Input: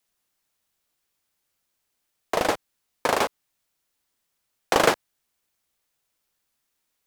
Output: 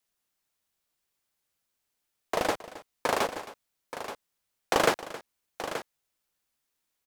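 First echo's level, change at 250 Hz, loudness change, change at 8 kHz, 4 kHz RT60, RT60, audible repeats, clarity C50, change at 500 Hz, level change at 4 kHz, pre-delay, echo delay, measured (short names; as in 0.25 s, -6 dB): -17.0 dB, -4.0 dB, -6.0 dB, -4.0 dB, none, none, 2, none, -4.0 dB, -4.0 dB, none, 0.268 s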